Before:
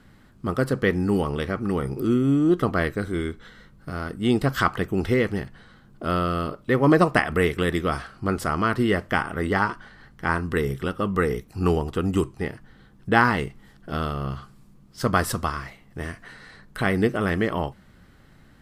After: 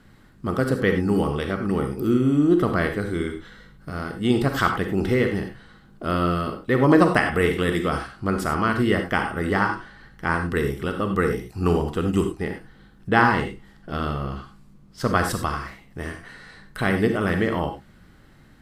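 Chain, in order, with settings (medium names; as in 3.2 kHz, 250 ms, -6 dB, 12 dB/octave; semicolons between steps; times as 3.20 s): 13.11–15.31 s: treble shelf 8.5 kHz -6.5 dB; reverberation, pre-delay 33 ms, DRR 5.5 dB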